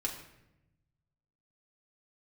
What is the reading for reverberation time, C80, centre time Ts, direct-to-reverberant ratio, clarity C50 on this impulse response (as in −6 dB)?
0.90 s, 9.5 dB, 25 ms, −1.5 dB, 7.0 dB